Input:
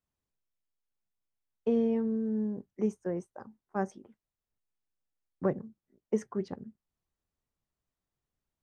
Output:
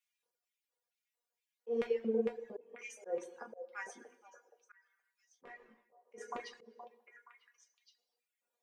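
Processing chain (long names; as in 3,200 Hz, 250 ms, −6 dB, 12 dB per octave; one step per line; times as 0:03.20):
auto-filter high-pass square 2.2 Hz 500–2,300 Hz
brickwall limiter −23 dBFS, peak gain reduction 8 dB
low-shelf EQ 120 Hz −7 dB
mains-hum notches 60/120/180/240/300/360/420 Hz
flanger 0.57 Hz, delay 4.4 ms, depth 3.5 ms, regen −83%
notch filter 680 Hz, Q 13
tuned comb filter 240 Hz, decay 0.17 s, harmonics all, mix 90%
echo through a band-pass that steps 472 ms, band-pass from 660 Hz, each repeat 1.4 octaves, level −6.5 dB
reverb whose tail is shaped and stops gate 390 ms falling, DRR 3.5 dB
reverb reduction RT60 1 s
volume swells 203 ms
0:05.43–0:06.18: micro pitch shift up and down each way 11 cents
level +17 dB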